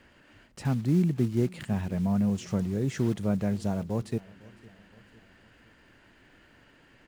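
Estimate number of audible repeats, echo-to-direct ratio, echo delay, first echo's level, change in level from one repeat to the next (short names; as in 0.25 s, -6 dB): 3, -22.0 dB, 0.506 s, -23.0 dB, -6.0 dB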